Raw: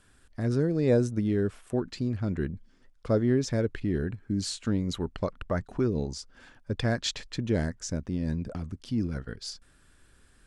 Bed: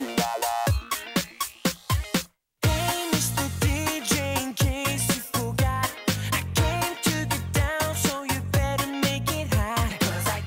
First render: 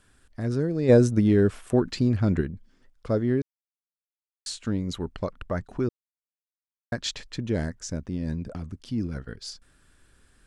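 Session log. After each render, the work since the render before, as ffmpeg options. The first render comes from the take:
-filter_complex "[0:a]asplit=3[s0][s1][s2];[s0]afade=t=out:st=0.88:d=0.02[s3];[s1]acontrast=86,afade=t=in:st=0.88:d=0.02,afade=t=out:st=2.4:d=0.02[s4];[s2]afade=t=in:st=2.4:d=0.02[s5];[s3][s4][s5]amix=inputs=3:normalize=0,asplit=5[s6][s7][s8][s9][s10];[s6]atrim=end=3.42,asetpts=PTS-STARTPTS,afade=t=out:st=3.416:d=0.004:c=hsin[s11];[s7]atrim=start=3.42:end=4.46,asetpts=PTS-STARTPTS,volume=0[s12];[s8]atrim=start=4.46:end=5.89,asetpts=PTS-STARTPTS,afade=t=in:d=0.004:c=hsin,afade=t=out:st=1.426:d=0.004:c=hsin[s13];[s9]atrim=start=5.89:end=6.92,asetpts=PTS-STARTPTS,volume=0[s14];[s10]atrim=start=6.92,asetpts=PTS-STARTPTS,afade=t=in:d=0.004:c=hsin[s15];[s11][s12][s13][s14][s15]concat=n=5:v=0:a=1"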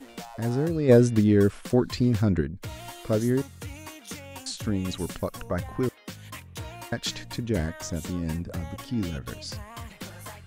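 -filter_complex "[1:a]volume=0.168[s0];[0:a][s0]amix=inputs=2:normalize=0"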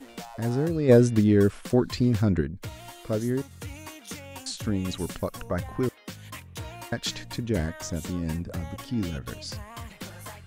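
-filter_complex "[0:a]asplit=3[s0][s1][s2];[s0]atrim=end=2.692[s3];[s1]atrim=start=2.688:end=3.512,asetpts=PTS-STARTPTS,volume=0.708[s4];[s2]atrim=start=3.508[s5];[s3][s4]acrossfade=d=0.004:c1=hsin:c2=hsin[s6];[s6][s5]acrossfade=d=0.004:c1=hsin:c2=hsin"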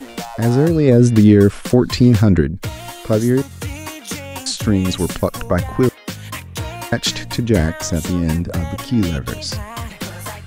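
-filter_complex "[0:a]acrossover=split=360[s0][s1];[s1]acompressor=threshold=0.0631:ratio=6[s2];[s0][s2]amix=inputs=2:normalize=0,alimiter=level_in=3.98:limit=0.891:release=50:level=0:latency=1"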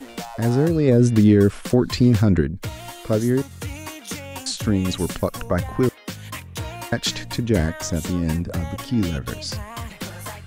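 -af "volume=0.596"

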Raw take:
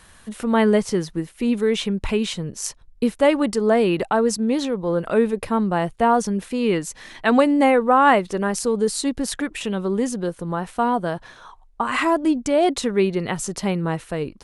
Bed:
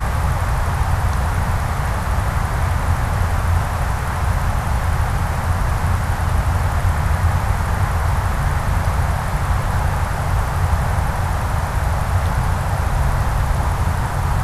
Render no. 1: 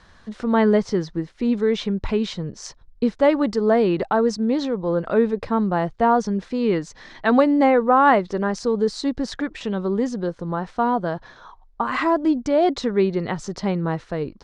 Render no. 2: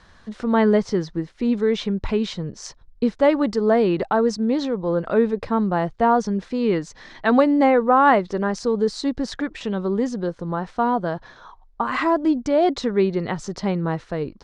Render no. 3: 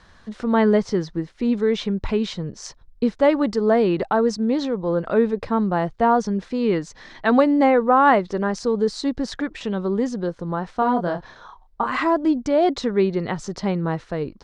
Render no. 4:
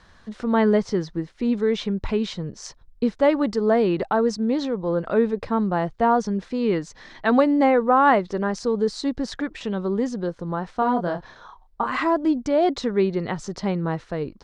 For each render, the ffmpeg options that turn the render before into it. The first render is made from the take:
-af "lowpass=f=5400:w=0.5412,lowpass=f=5400:w=1.3066,equalizer=f=2700:w=2.1:g=-7.5"
-af anull
-filter_complex "[0:a]asettb=1/sr,asplit=3[s0][s1][s2];[s0]atrim=end=10.794[s3];[s1]atrim=start=10.79:end=11.86,asetpts=PTS-STARTPTS,afade=t=in:d=0.004:c=qsin,afade=t=out:st=1.066:d=0.004:c=qsin,asplit=2[s4][s5];[s5]adelay=28,volume=0.562[s6];[s4][s6]amix=inputs=2:normalize=0,atrim=end_sample=47187[s7];[s2]atrim=start=11.856[s8];[s3][s7]acrossfade=d=0.004:c1=hsin:c2=qsin[s9];[s9][s8]acrossfade=d=0.004:c1=qsin:c2=hsin"
-af "volume=0.841"

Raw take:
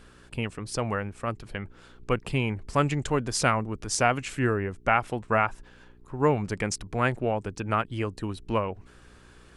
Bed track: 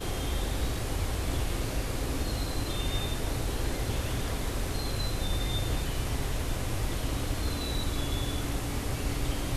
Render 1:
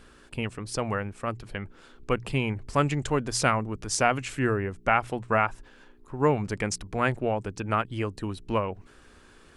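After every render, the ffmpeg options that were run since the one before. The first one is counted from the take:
-af "bandreject=f=60:t=h:w=4,bandreject=f=120:t=h:w=4,bandreject=f=180:t=h:w=4"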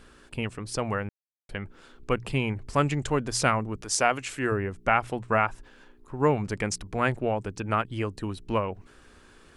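-filter_complex "[0:a]asettb=1/sr,asplit=3[s0][s1][s2];[s0]atrim=end=3.814[s3];[s1]atrim=start=3.81:end=4.52,asetpts=PTS-STARTPTS,afade=t=in:d=0.004:c=qsin,afade=t=out:st=0.706:d=0.004:c=qsin,bass=f=250:g=-8,treble=f=4000:g=2[s4];[s2]atrim=start=4.516[s5];[s3][s4]acrossfade=d=0.004:c1=hsin:c2=qsin[s6];[s6][s5]acrossfade=d=0.004:c1=qsin:c2=hsin,asplit=3[s7][s8][s9];[s7]atrim=end=1.09,asetpts=PTS-STARTPTS,afade=t=out:st=1.086:d=0.004:c=hsin[s10];[s8]atrim=start=1.09:end=1.49,asetpts=PTS-STARTPTS,volume=0[s11];[s9]atrim=start=1.49,asetpts=PTS-STARTPTS,afade=t=in:d=0.004:c=hsin[s12];[s10][s11][s12]concat=n=3:v=0:a=1"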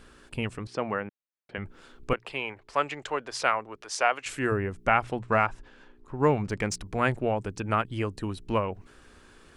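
-filter_complex "[0:a]asettb=1/sr,asplit=3[s0][s1][s2];[s0]atrim=end=0.674[s3];[s1]atrim=start=0.67:end=1.58,asetpts=PTS-STARTPTS,afade=t=in:d=0.004:c=qsin,afade=t=out:st=0.906:d=0.004:c=qsin,highpass=190,lowpass=3000[s4];[s2]atrim=start=1.576[s5];[s3][s4]acrossfade=d=0.004:c1=hsin:c2=qsin[s6];[s6][s5]acrossfade=d=0.004:c1=qsin:c2=hsin,asettb=1/sr,asplit=3[s7][s8][s9];[s7]atrim=end=2.134[s10];[s8]atrim=start=2.13:end=4.26,asetpts=PTS-STARTPTS,afade=t=in:d=0.004:c=qsin,afade=t=out:st=2.126:d=0.004:c=qsin,acrossover=split=420 4900:gain=0.0891 1 0.224[s11][s12][s13];[s11][s12][s13]amix=inputs=3:normalize=0[s14];[s9]atrim=start=4.256[s15];[s10][s14]acrossfade=d=0.004:c1=hsin:c2=qsin[s16];[s16][s15]acrossfade=d=0.004:c1=qsin:c2=hsin,asettb=1/sr,asplit=3[s17][s18][s19];[s17]atrim=end=5.034[s20];[s18]atrim=start=5.03:end=6.8,asetpts=PTS-STARTPTS,afade=t=in:d=0.004:c=qsin,afade=t=out:st=1.766:d=0.004:c=qsin,adynamicsmooth=sensitivity=6.5:basefreq=7800[s21];[s19]atrim=start=6.796[s22];[s20][s21]acrossfade=d=0.004:c1=hsin:c2=qsin[s23];[s23][s22]acrossfade=d=0.004:c1=qsin:c2=hsin"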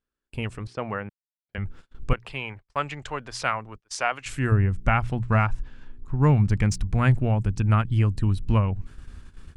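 -af "asubboost=boost=8:cutoff=150,agate=range=0.0178:threshold=0.01:ratio=16:detection=peak"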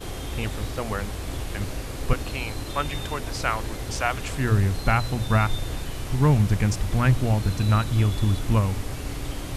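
-filter_complex "[1:a]volume=0.891[s0];[0:a][s0]amix=inputs=2:normalize=0"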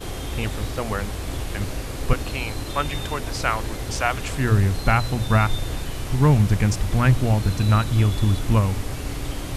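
-af "volume=1.33"

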